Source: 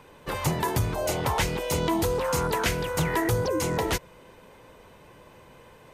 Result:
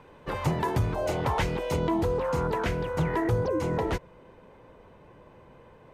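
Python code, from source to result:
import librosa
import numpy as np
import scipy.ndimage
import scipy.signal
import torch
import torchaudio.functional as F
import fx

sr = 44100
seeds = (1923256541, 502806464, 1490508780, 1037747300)

y = fx.lowpass(x, sr, hz=fx.steps((0.0, 1900.0), (1.76, 1100.0)), slope=6)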